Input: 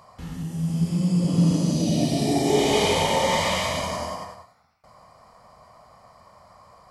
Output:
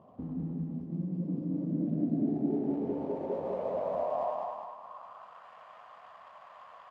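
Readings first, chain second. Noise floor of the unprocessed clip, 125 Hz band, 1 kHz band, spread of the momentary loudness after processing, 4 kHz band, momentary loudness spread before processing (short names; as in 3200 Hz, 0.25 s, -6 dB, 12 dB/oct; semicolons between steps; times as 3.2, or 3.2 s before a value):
-56 dBFS, -13.5 dB, -11.5 dB, 22 LU, under -35 dB, 13 LU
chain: median filter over 25 samples; bell 690 Hz +2.5 dB; compressor 6:1, threshold -35 dBFS, peak gain reduction 18.5 dB; on a send: feedback echo 0.203 s, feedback 49%, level -3.5 dB; on the sum: band-pass sweep 270 Hz -> 1600 Hz, 2.93–5.46; de-hum 57.31 Hz, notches 3; gain +8.5 dB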